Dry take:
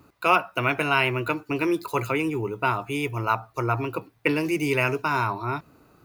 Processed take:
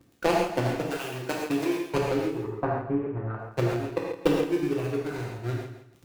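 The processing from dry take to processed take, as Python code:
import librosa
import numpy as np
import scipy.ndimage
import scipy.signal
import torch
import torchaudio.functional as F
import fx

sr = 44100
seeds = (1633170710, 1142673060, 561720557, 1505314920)

y = scipy.ndimage.median_filter(x, 41, mode='constant')
y = fx.dereverb_blind(y, sr, rt60_s=0.73)
y = fx.dmg_crackle(y, sr, seeds[0], per_s=110.0, level_db=-44.0)
y = fx.lowpass(y, sr, hz=1700.0, slope=24, at=(2.39, 3.39))
y = fx.transient(y, sr, attack_db=12, sustain_db=-7)
y = fx.tilt_eq(y, sr, slope=2.0, at=(0.9, 1.79))
y = fx.echo_feedback(y, sr, ms=165, feedback_pct=24, wet_db=-11.5)
y = fx.rev_gated(y, sr, seeds[1], gate_ms=160, shape='flat', drr_db=-2.5)
y = y * 10.0 ** (-7.0 / 20.0)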